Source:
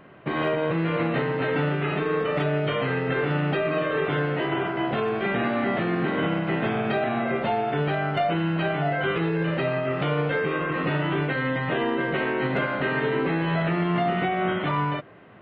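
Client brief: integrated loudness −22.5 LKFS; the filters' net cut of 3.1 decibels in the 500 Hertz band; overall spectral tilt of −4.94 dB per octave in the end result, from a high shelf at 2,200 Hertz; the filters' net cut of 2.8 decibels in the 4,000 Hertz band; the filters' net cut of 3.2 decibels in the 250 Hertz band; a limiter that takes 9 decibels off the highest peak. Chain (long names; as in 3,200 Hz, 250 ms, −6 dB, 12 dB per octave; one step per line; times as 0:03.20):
parametric band 250 Hz −4 dB
parametric band 500 Hz −3 dB
high-shelf EQ 2,200 Hz +4 dB
parametric band 4,000 Hz −8.5 dB
level +9.5 dB
brickwall limiter −14.5 dBFS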